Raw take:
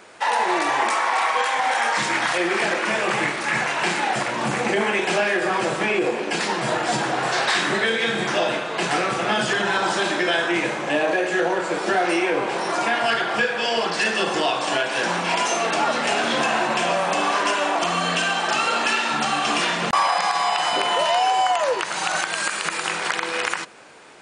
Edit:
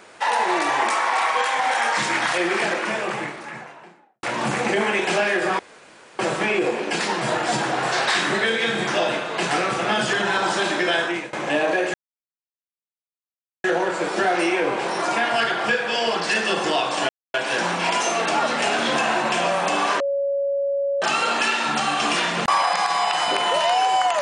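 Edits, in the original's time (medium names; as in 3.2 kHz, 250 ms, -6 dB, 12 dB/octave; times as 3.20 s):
2.47–4.23 s: studio fade out
5.59 s: insert room tone 0.60 s
10.41–10.73 s: fade out, to -21.5 dB
11.34 s: insert silence 1.70 s
14.79 s: insert silence 0.25 s
17.45–18.47 s: bleep 559 Hz -19.5 dBFS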